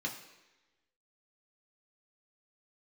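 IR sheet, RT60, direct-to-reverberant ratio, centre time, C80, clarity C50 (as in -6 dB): 1.1 s, -0.5 dB, 22 ms, 11.0 dB, 8.5 dB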